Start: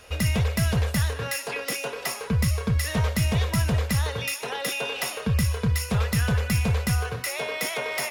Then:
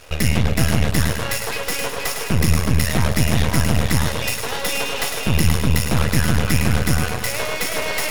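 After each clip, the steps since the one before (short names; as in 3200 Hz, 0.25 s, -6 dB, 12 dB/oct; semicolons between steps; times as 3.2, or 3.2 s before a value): split-band echo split 800 Hz, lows 0.111 s, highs 0.476 s, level -5 dB; half-wave rectifier; gain +9 dB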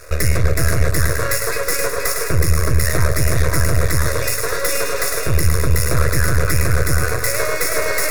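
limiter -8.5 dBFS, peak gain reduction 5 dB; fixed phaser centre 830 Hz, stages 6; gain +7 dB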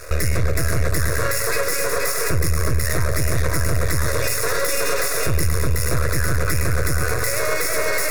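limiter -12 dBFS, peak gain reduction 9.5 dB; gain +3 dB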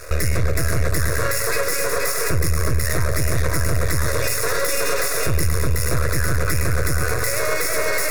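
nothing audible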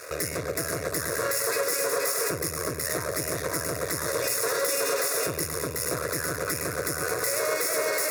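HPF 250 Hz 12 dB/oct; dynamic EQ 2200 Hz, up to -5 dB, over -40 dBFS, Q 0.73; gain -2.5 dB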